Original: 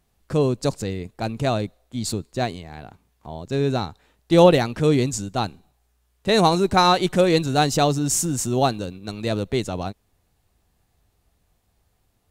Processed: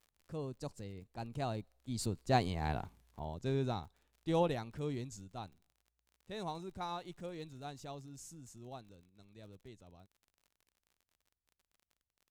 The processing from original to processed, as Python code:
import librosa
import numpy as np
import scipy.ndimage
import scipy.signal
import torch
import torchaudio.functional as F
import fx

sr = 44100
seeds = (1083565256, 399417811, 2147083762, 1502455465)

y = fx.doppler_pass(x, sr, speed_mps=11, closest_m=1.8, pass_at_s=2.7)
y = fx.low_shelf(y, sr, hz=110.0, db=7.5)
y = fx.dmg_crackle(y, sr, seeds[0], per_s=43.0, level_db=-54.0)
y = fx.dynamic_eq(y, sr, hz=900.0, q=2.5, threshold_db=-56.0, ratio=4.0, max_db=5)